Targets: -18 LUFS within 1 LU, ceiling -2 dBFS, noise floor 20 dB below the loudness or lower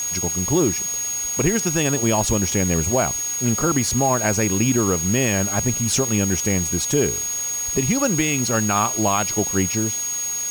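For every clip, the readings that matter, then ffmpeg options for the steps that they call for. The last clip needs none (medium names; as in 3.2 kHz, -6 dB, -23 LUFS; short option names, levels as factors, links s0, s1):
steady tone 6.6 kHz; tone level -23 dBFS; noise floor -26 dBFS; noise floor target -40 dBFS; loudness -19.5 LUFS; peak level -7.0 dBFS; loudness target -18.0 LUFS
-> -af "bandreject=f=6600:w=30"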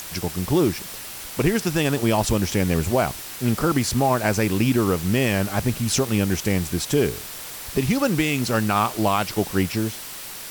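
steady tone not found; noise floor -36 dBFS; noise floor target -43 dBFS
-> -af "afftdn=nr=7:nf=-36"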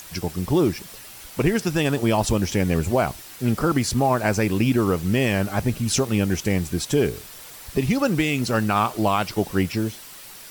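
noise floor -42 dBFS; noise floor target -43 dBFS
-> -af "afftdn=nr=6:nf=-42"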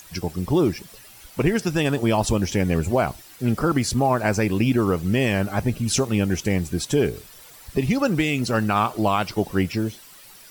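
noise floor -46 dBFS; loudness -22.5 LUFS; peak level -9.0 dBFS; loudness target -18.0 LUFS
-> -af "volume=1.68"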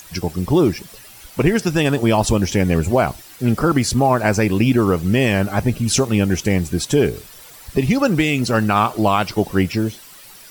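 loudness -18.0 LUFS; peak level -4.5 dBFS; noise floor -42 dBFS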